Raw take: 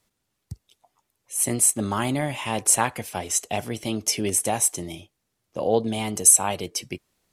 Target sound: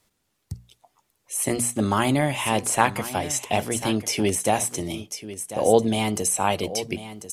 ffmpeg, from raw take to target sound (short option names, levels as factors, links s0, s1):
-filter_complex "[0:a]bandreject=f=60:t=h:w=6,bandreject=f=120:t=h:w=6,bandreject=f=180:t=h:w=6,bandreject=f=240:t=h:w=6,asplit=2[s0][s1];[s1]aecho=0:1:1043:0.2[s2];[s0][s2]amix=inputs=2:normalize=0,acrossover=split=3200[s3][s4];[s4]acompressor=threshold=0.0501:ratio=4:attack=1:release=60[s5];[s3][s5]amix=inputs=2:normalize=0,volume=1.58"